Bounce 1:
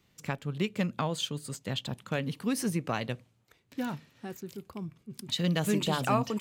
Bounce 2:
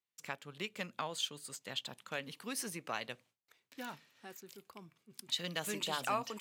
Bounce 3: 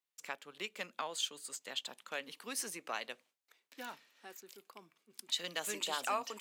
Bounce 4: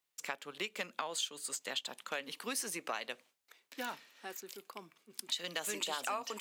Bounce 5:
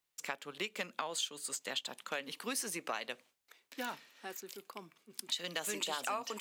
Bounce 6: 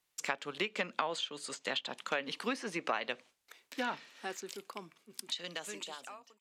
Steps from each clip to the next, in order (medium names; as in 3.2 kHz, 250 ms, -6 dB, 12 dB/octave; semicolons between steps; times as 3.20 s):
high-pass 990 Hz 6 dB/octave; gate with hold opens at -59 dBFS; trim -3 dB
Bessel high-pass 330 Hz, order 4; dynamic bell 7.3 kHz, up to +4 dB, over -56 dBFS, Q 2.3
compression 4:1, threshold -41 dBFS, peak gain reduction 10 dB; trim +6.5 dB
bass shelf 170 Hz +5.5 dB
fade out at the end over 2.05 s; low-pass that closes with the level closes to 2.7 kHz, closed at -34 dBFS; trim +5 dB